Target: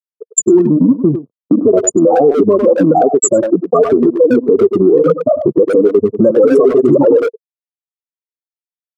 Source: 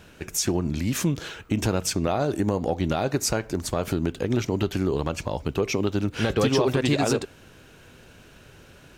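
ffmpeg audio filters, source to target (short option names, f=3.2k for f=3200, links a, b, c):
-filter_complex "[0:a]afftfilt=real='re*pow(10,15/40*sin(2*PI*(1.4*log(max(b,1)*sr/1024/100)/log(2)-(-1.4)*(pts-256)/sr)))':imag='im*pow(10,15/40*sin(2*PI*(1.4*log(max(b,1)*sr/1024/100)/log(2)-(-1.4)*(pts-256)/sr)))':win_size=1024:overlap=0.75,afftfilt=real='re*gte(hypot(re,im),0.316)':imag='im*gte(hypot(re,im),0.316)':win_size=1024:overlap=0.75,agate=range=-19dB:threshold=-45dB:ratio=16:detection=peak,bass=f=250:g=-14,treble=f=4k:g=9,acompressor=threshold=-37dB:ratio=2.5,aeval=exprs='0.133*sin(PI/2*1.78*val(0)/0.133)':c=same,aeval=exprs='0.133*(cos(1*acos(clip(val(0)/0.133,-1,1)))-cos(1*PI/2))+0.00422*(cos(3*acos(clip(val(0)/0.133,-1,1)))-cos(3*PI/2))+0.00299*(cos(8*acos(clip(val(0)/0.133,-1,1)))-cos(8*PI/2))':c=same,asuperstop=centerf=3000:order=20:qfactor=0.54,highpass=f=160:w=0.5412,highpass=f=160:w=1.3066,equalizer=f=470:t=q:w=4:g=7,equalizer=f=810:t=q:w=4:g=-10,equalizer=f=1.6k:t=q:w=4:g=5,lowpass=f=7.9k:w=0.5412,lowpass=f=7.9k:w=1.3066,asplit=2[a][b];[b]adelay=100,highpass=300,lowpass=3.4k,asoftclip=type=hard:threshold=-23.5dB,volume=-10dB[c];[a][c]amix=inputs=2:normalize=0,alimiter=level_in=23.5dB:limit=-1dB:release=50:level=0:latency=1,volume=-1dB"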